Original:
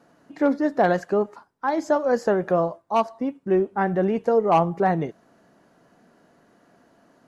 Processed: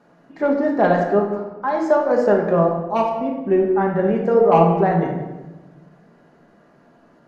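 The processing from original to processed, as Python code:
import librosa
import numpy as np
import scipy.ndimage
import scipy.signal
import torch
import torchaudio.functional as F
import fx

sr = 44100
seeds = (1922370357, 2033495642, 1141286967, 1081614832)

p1 = fx.high_shelf(x, sr, hz=5000.0, db=-11.5)
p2 = fx.hum_notches(p1, sr, base_hz=60, count=7)
p3 = fx.level_steps(p2, sr, step_db=10)
p4 = p2 + (p3 * 10.0 ** (-2.0 / 20.0))
p5 = fx.echo_wet_lowpass(p4, sr, ms=93, feedback_pct=46, hz=2700.0, wet_db=-11.5)
p6 = fx.room_shoebox(p5, sr, seeds[0], volume_m3=520.0, walls='mixed', distance_m=1.3)
y = p6 * 10.0 ** (-2.5 / 20.0)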